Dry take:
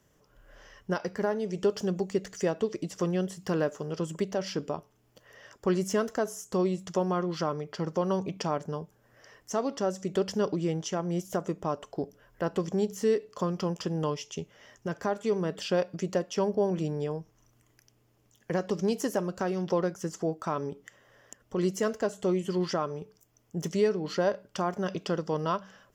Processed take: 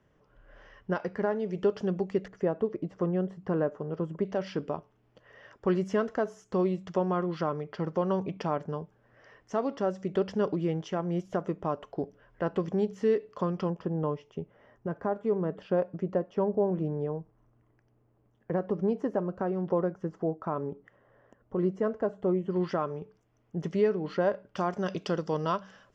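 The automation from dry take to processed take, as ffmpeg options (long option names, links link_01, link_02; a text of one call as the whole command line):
ffmpeg -i in.wav -af "asetnsamples=nb_out_samples=441:pad=0,asendcmd='2.28 lowpass f 1300;4.25 lowpass f 2700;13.7 lowpass f 1200;22.56 lowpass f 2400;24.57 lowpass f 5900',lowpass=2600" out.wav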